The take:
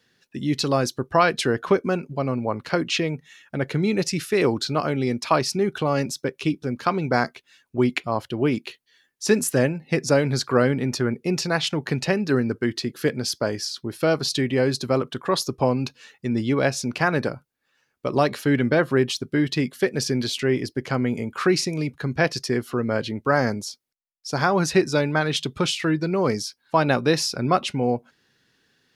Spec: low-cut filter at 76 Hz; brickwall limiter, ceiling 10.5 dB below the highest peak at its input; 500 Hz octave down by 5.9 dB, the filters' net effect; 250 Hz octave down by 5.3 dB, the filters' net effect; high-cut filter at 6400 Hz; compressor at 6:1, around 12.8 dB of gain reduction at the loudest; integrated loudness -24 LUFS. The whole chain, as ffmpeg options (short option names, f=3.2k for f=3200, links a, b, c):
-af "highpass=76,lowpass=6.4k,equalizer=f=250:t=o:g=-5,equalizer=f=500:t=o:g=-6,acompressor=threshold=-31dB:ratio=6,volume=13dB,alimiter=limit=-12.5dB:level=0:latency=1"